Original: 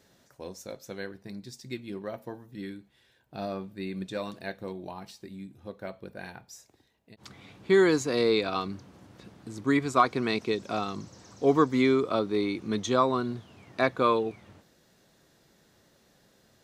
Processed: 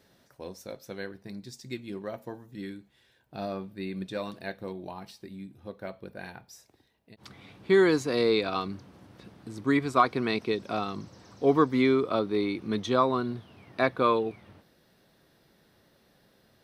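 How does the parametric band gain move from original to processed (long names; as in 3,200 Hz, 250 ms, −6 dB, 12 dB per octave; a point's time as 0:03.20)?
parametric band 7,000 Hz 0.38 octaves
0:00.92 −8 dB
0:01.70 +2 dB
0:02.69 +2 dB
0:03.77 −7 dB
0:09.70 −7 dB
0:10.26 −14 dB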